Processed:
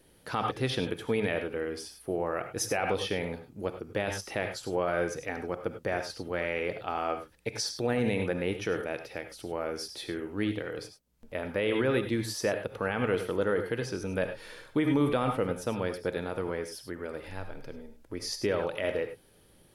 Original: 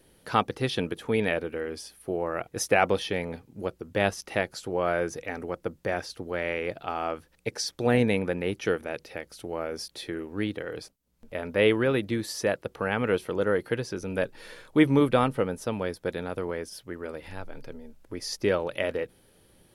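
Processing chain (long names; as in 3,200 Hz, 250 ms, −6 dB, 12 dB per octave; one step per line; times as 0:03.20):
reverb whose tail is shaped and stops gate 120 ms rising, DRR 8 dB
brickwall limiter −16 dBFS, peak gain reduction 9.5 dB
level −1.5 dB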